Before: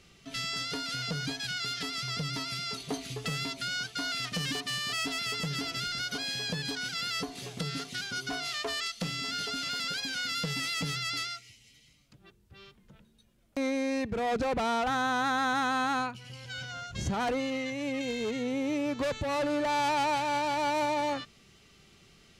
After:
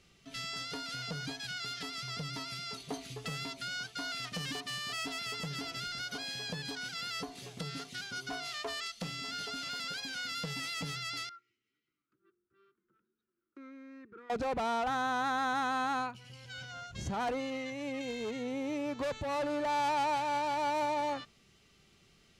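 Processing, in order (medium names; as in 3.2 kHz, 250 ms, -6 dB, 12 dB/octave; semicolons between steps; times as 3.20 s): 11.29–14.30 s: two resonant band-passes 690 Hz, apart 1.9 oct; dynamic bell 840 Hz, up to +4 dB, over -45 dBFS, Q 1.1; trim -6 dB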